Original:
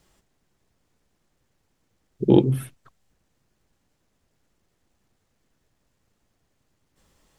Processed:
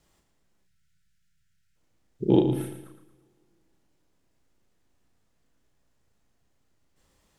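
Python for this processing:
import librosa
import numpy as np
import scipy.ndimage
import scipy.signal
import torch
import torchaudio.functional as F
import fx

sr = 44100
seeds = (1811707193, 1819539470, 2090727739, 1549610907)

p1 = fx.vibrato(x, sr, rate_hz=1.7, depth_cents=8.5)
p2 = p1 + fx.echo_feedback(p1, sr, ms=113, feedback_pct=42, wet_db=-9, dry=0)
p3 = fx.spec_box(p2, sr, start_s=0.63, length_s=1.13, low_hz=210.0, high_hz=1300.0, gain_db=-27)
p4 = fx.doubler(p3, sr, ms=33.0, db=-4.5)
p5 = fx.rev_double_slope(p4, sr, seeds[0], early_s=0.88, late_s=2.9, knee_db=-18, drr_db=16.0)
y = p5 * librosa.db_to_amplitude(-5.0)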